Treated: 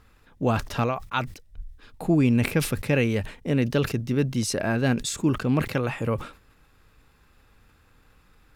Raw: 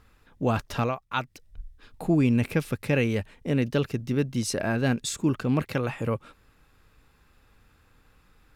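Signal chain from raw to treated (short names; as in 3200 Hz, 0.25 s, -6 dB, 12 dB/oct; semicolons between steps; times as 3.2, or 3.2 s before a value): sustainer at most 130 dB/s; gain +1.5 dB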